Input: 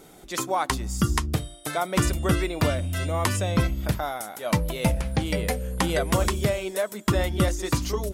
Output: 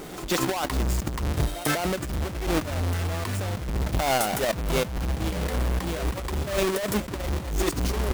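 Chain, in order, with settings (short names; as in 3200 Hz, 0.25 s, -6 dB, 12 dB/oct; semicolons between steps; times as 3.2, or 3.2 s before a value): half-waves squared off; pre-echo 0.199 s -23 dB; negative-ratio compressor -27 dBFS, ratio -1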